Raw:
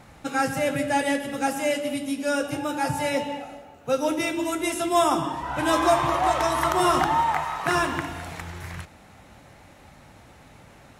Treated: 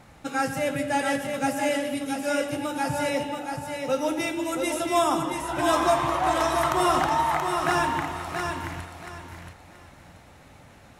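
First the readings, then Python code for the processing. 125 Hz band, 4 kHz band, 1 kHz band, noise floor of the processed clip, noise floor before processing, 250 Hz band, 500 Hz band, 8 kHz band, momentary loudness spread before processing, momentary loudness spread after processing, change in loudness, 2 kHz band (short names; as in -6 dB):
-1.0 dB, -1.0 dB, -1.0 dB, -51 dBFS, -51 dBFS, -1.0 dB, -1.0 dB, -1.0 dB, 15 LU, 10 LU, -1.5 dB, -1.0 dB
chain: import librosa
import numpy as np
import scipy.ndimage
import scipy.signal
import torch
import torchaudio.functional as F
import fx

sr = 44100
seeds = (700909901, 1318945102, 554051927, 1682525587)

y = fx.echo_feedback(x, sr, ms=679, feedback_pct=25, wet_db=-5.5)
y = y * 10.0 ** (-2.0 / 20.0)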